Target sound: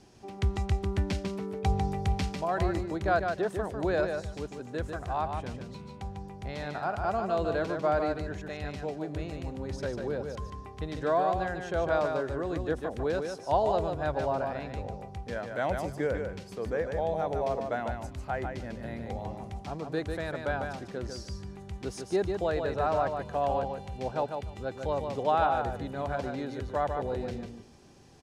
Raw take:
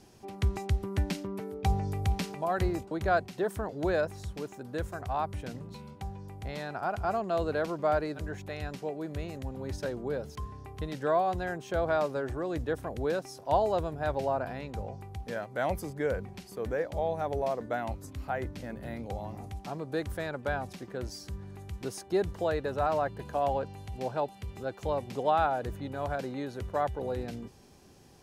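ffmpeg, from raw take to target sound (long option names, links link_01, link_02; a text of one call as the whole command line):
ffmpeg -i in.wav -filter_complex "[0:a]lowpass=8100,asplit=2[link_01][link_02];[link_02]aecho=0:1:148|296|444:0.531|0.0849|0.0136[link_03];[link_01][link_03]amix=inputs=2:normalize=0" out.wav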